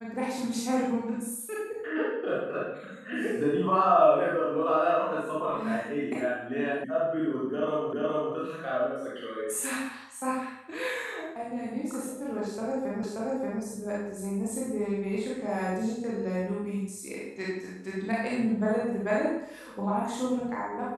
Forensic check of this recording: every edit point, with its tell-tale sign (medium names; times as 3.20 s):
6.84 s: sound stops dead
7.93 s: repeat of the last 0.42 s
13.03 s: repeat of the last 0.58 s